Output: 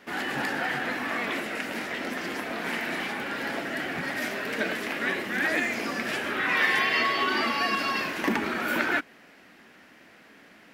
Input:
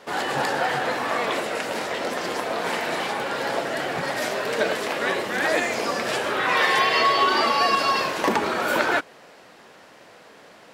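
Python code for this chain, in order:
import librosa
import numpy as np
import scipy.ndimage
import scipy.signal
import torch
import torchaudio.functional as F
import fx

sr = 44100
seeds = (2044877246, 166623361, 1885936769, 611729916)

y = fx.graphic_eq(x, sr, hz=(125, 250, 500, 1000, 2000, 4000, 8000), db=(-7, 5, -10, -8, 3, -6, -8))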